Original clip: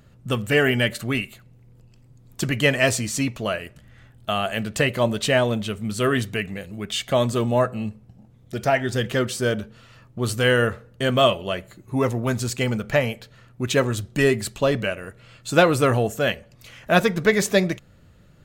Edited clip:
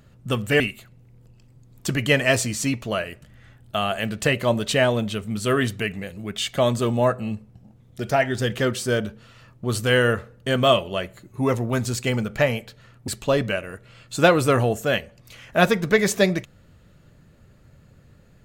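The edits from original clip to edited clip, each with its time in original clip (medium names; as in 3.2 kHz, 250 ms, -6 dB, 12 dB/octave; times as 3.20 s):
0.60–1.14 s: delete
13.62–14.42 s: delete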